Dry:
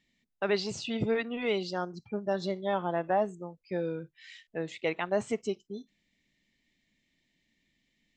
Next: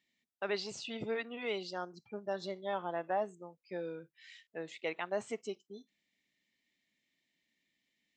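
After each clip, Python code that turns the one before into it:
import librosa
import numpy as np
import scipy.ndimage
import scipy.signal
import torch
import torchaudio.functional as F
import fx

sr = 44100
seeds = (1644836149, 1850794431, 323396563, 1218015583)

y = fx.highpass(x, sr, hz=380.0, slope=6)
y = F.gain(torch.from_numpy(y), -5.0).numpy()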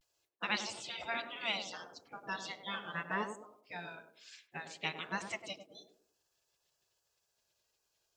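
y = fx.spec_gate(x, sr, threshold_db=-15, keep='weak')
y = fx.echo_banded(y, sr, ms=99, feedback_pct=41, hz=380.0, wet_db=-5.0)
y = fx.vibrato(y, sr, rate_hz=0.34, depth_cents=38.0)
y = F.gain(torch.from_numpy(y), 9.5).numpy()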